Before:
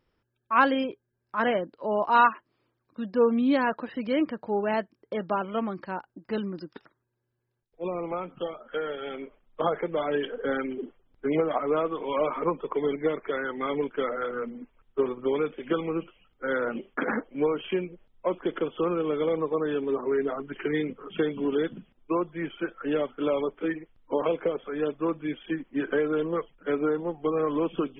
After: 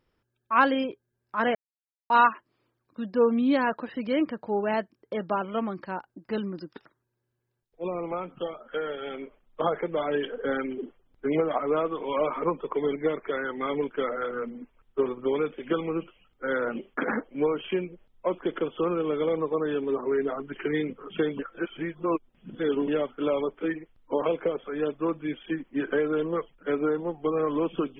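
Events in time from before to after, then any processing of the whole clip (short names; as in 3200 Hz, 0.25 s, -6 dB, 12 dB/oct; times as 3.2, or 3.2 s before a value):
1.55–2.1 mute
21.39–22.88 reverse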